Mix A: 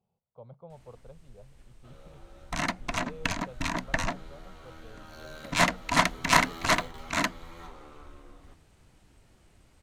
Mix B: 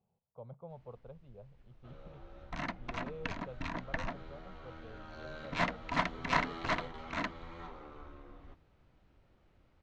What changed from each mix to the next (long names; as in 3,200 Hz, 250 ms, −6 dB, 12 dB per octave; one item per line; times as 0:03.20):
second sound −7.5 dB
master: add high-frequency loss of the air 200 metres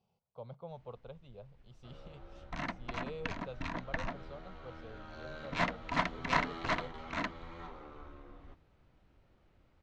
speech: remove head-to-tape spacing loss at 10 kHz 42 dB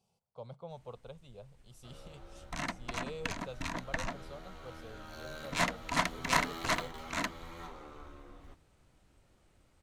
master: remove high-frequency loss of the air 200 metres